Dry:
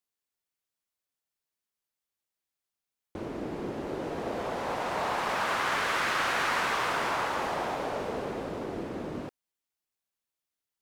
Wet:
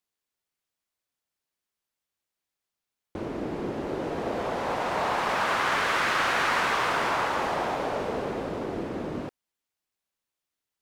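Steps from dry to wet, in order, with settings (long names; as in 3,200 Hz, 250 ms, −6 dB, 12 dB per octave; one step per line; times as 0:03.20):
high-shelf EQ 7,000 Hz −4.5 dB
level +3.5 dB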